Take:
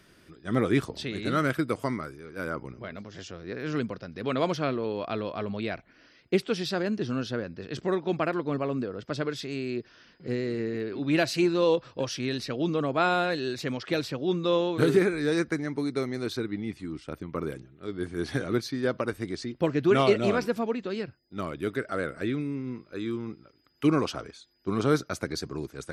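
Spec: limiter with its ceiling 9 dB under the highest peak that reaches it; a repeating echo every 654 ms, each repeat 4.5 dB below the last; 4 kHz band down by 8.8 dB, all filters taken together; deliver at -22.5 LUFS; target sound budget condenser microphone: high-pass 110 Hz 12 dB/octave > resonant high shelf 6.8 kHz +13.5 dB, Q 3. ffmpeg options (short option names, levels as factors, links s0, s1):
-af "equalizer=f=4000:t=o:g=-5,alimiter=limit=0.119:level=0:latency=1,highpass=110,highshelf=f=6800:t=q:w=3:g=13.5,aecho=1:1:654|1308|1962|2616|3270|3924|4578|5232|5886:0.596|0.357|0.214|0.129|0.0772|0.0463|0.0278|0.0167|0.01,volume=2.24"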